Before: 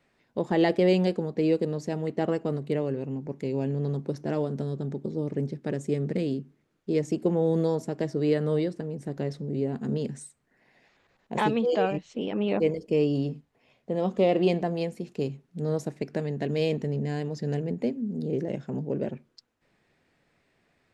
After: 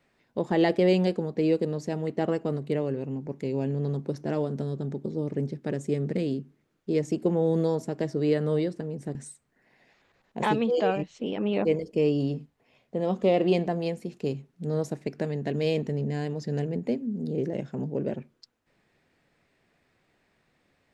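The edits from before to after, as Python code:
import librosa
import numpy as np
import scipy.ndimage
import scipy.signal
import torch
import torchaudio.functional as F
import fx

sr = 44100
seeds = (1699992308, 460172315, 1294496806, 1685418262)

y = fx.edit(x, sr, fx.cut(start_s=9.15, length_s=0.95), tone=tone)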